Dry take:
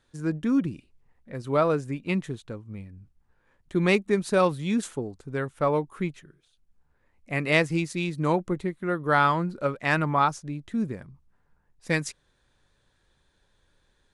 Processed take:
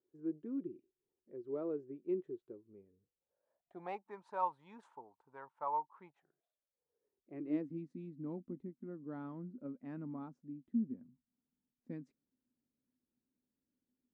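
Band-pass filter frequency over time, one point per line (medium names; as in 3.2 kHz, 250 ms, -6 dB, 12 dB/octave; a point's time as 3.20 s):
band-pass filter, Q 11
2.70 s 370 Hz
4.12 s 920 Hz
5.99 s 920 Hz
7.79 s 250 Hz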